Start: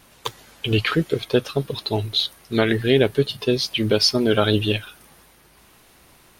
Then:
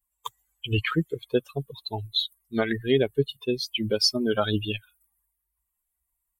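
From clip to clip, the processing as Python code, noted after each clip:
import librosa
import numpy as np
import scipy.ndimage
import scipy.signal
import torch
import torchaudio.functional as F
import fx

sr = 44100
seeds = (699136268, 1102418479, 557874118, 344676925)

y = fx.bin_expand(x, sr, power=2.0)
y = F.gain(torch.from_numpy(y), -2.0).numpy()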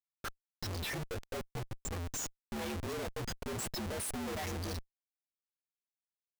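y = fx.partial_stretch(x, sr, pct=121)
y = fx.schmitt(y, sr, flips_db=-40.0)
y = F.gain(torch.from_numpy(y), -7.0).numpy()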